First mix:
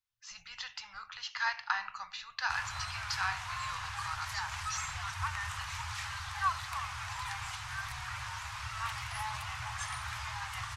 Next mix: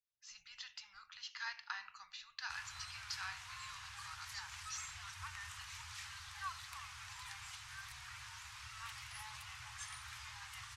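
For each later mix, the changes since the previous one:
master: add passive tone stack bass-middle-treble 5-5-5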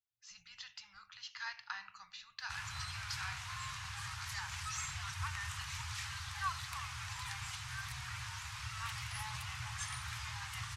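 background +5.5 dB; master: add bell 170 Hz +13 dB 2.1 oct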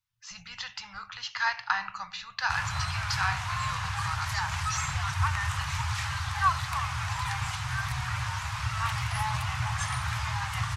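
speech +4.0 dB; master: remove passive tone stack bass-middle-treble 5-5-5

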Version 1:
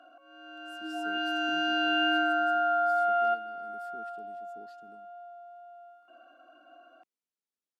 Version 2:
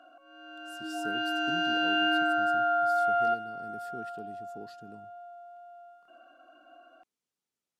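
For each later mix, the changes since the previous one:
speech +8.0 dB; master: remove HPF 190 Hz 24 dB/oct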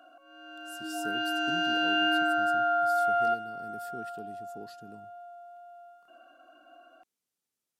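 master: add high shelf 9000 Hz +12 dB

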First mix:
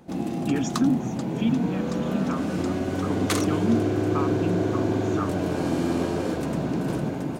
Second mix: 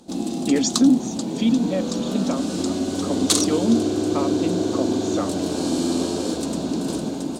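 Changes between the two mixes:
speech: remove fixed phaser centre 3000 Hz, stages 8; master: add graphic EQ 125/250/2000/4000/8000 Hz -10/+6/-9/+11/+12 dB

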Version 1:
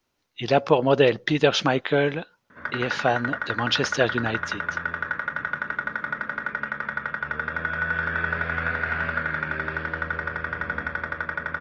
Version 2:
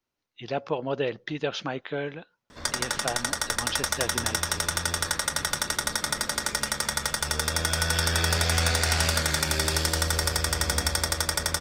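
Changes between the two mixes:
speech -10.0 dB; background: remove speaker cabinet 140–2100 Hz, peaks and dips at 350 Hz -6 dB, 520 Hz -3 dB, 780 Hz -9 dB, 1500 Hz +8 dB

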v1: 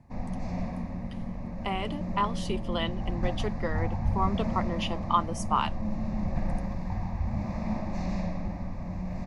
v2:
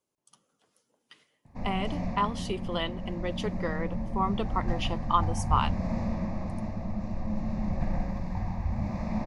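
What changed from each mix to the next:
background: entry +1.45 s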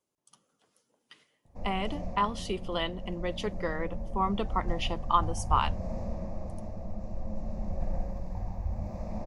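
background: add graphic EQ 125/250/500/1000/2000/4000 Hz -7/-9/+4/-7/-11/-8 dB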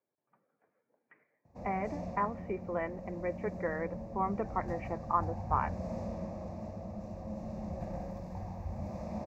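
speech: add rippled Chebyshev low-pass 2400 Hz, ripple 6 dB; master: add HPF 93 Hz 12 dB/oct

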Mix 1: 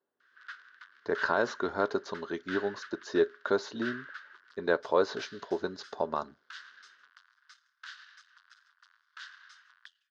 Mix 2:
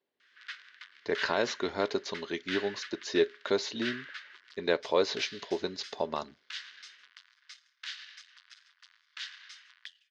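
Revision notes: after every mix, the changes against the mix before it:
background: send +9.5 dB; master: add resonant high shelf 1800 Hz +6.5 dB, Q 3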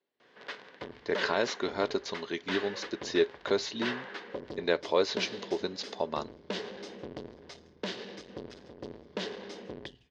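background: remove steep high-pass 1300 Hz 48 dB/oct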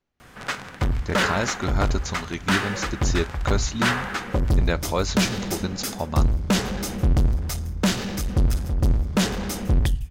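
background +9.0 dB; master: remove speaker cabinet 380–4500 Hz, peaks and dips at 420 Hz +6 dB, 780 Hz -6 dB, 1300 Hz -10 dB, 2400 Hz -5 dB

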